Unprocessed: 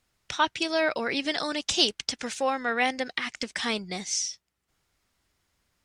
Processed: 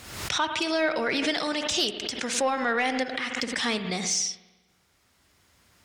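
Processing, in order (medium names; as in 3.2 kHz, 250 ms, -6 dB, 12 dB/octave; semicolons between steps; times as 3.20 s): recorder AGC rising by 6.6 dB/s; high-pass 60 Hz; in parallel at +3 dB: peak limiter -15 dBFS, peak gain reduction 7.5 dB; on the sum: saturation -6 dBFS, distortion -23 dB; on a send at -10 dB: reverberation RT60 1.2 s, pre-delay 50 ms; on the sum: swell ahead of each attack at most 59 dB/s; trim -7.5 dB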